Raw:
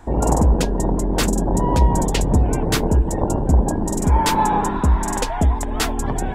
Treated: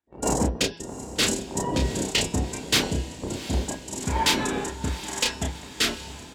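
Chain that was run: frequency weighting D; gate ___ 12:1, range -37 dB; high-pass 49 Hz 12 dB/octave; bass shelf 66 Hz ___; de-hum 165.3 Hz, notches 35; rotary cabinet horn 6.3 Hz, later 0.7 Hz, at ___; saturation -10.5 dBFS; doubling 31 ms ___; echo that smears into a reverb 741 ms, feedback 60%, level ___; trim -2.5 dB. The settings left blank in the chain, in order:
-19 dBFS, +5.5 dB, 0.93 s, -4 dB, -14 dB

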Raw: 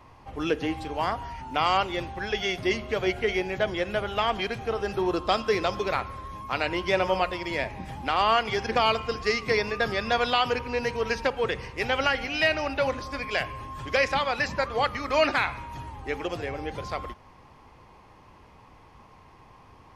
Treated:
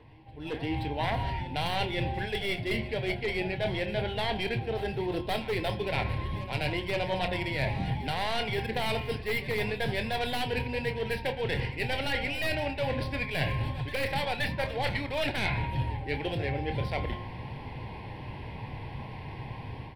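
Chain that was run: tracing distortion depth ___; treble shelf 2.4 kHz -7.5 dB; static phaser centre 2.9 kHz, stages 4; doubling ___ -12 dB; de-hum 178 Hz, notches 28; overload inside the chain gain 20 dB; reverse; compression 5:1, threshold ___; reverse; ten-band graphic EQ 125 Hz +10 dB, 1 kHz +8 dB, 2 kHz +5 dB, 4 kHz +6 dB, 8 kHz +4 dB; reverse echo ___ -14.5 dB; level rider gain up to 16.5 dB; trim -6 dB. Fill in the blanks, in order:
0.27 ms, 28 ms, -44 dBFS, 523 ms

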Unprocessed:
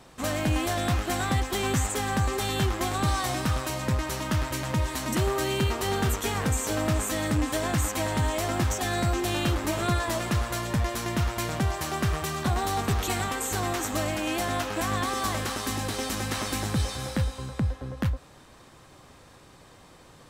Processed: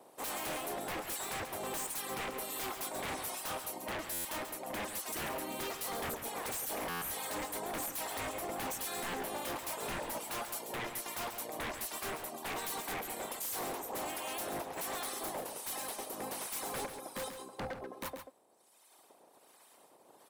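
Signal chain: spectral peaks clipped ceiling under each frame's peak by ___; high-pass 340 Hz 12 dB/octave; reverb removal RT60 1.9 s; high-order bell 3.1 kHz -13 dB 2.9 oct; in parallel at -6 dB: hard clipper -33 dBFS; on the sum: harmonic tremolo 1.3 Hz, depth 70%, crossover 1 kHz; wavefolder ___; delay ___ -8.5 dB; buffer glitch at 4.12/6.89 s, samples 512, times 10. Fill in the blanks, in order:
17 dB, -33.5 dBFS, 137 ms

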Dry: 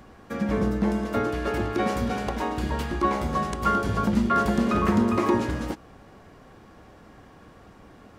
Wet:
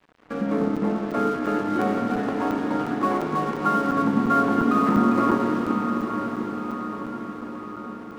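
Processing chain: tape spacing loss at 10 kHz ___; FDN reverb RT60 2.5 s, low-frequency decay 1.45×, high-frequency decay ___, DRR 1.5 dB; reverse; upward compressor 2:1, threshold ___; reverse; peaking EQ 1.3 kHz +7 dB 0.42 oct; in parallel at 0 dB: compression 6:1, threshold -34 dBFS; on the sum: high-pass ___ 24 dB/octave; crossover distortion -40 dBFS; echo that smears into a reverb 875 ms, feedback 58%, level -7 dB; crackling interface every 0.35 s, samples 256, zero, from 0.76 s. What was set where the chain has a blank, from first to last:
37 dB, 0.8×, -42 dBFS, 170 Hz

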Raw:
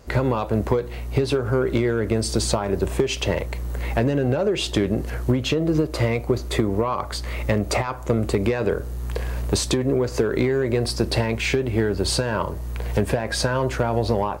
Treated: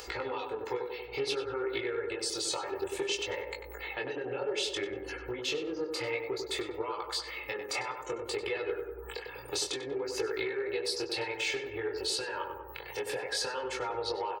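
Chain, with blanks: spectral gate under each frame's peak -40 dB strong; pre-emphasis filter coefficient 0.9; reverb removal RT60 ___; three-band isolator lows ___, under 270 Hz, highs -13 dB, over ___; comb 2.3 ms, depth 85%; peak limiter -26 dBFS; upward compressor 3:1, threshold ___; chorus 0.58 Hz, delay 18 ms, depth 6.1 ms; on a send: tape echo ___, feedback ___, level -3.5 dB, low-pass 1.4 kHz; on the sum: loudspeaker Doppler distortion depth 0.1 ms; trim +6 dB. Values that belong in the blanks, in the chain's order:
0.75 s, -14 dB, 5.3 kHz, -39 dBFS, 96 ms, 73%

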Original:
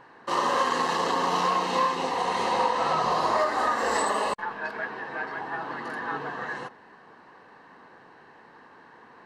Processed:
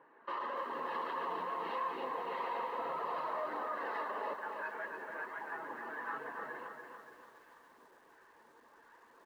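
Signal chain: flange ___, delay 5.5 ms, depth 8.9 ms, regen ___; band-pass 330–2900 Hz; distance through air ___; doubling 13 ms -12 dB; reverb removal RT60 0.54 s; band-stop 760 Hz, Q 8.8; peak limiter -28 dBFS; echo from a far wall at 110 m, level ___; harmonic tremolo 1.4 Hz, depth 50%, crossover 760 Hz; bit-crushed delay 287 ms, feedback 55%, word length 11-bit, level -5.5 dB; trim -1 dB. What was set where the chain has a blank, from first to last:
1.6 Hz, -64%, 260 m, -29 dB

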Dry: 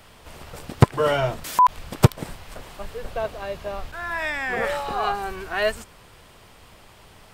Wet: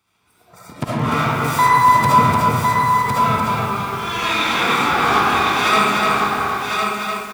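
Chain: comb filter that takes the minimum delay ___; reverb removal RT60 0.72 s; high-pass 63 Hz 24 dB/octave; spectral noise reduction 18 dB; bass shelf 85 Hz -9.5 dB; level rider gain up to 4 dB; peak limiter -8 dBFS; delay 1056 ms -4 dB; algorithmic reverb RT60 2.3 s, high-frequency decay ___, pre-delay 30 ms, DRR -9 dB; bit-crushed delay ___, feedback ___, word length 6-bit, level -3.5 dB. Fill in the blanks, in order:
0.83 ms, 0.35×, 298 ms, 35%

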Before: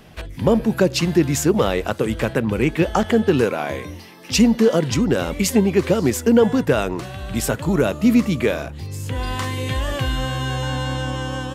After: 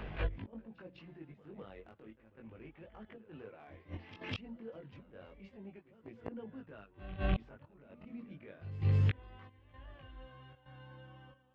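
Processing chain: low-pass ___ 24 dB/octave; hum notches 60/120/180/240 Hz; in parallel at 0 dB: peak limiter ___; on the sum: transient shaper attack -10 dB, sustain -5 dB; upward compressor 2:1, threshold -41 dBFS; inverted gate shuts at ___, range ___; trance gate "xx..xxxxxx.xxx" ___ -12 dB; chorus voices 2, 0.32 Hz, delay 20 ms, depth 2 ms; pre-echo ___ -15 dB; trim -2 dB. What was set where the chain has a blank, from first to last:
2.9 kHz, -12 dBFS, -17 dBFS, -30 dB, 114 bpm, 202 ms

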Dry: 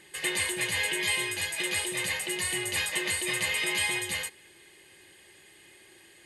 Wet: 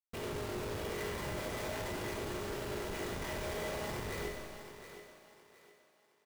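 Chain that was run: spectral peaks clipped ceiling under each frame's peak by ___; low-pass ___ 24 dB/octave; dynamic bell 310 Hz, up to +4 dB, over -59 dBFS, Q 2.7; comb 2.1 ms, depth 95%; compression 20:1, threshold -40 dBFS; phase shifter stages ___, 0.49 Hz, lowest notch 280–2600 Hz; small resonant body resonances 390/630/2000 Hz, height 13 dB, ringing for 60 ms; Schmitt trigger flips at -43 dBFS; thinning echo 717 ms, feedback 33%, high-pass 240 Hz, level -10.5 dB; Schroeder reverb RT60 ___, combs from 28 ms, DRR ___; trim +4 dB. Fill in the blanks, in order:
29 dB, 3.3 kHz, 12, 1.5 s, 1 dB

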